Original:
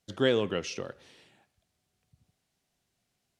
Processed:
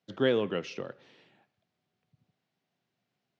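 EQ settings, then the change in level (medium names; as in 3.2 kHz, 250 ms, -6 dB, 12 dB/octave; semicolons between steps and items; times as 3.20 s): high-pass 120 Hz 24 dB/octave; distance through air 180 m; 0.0 dB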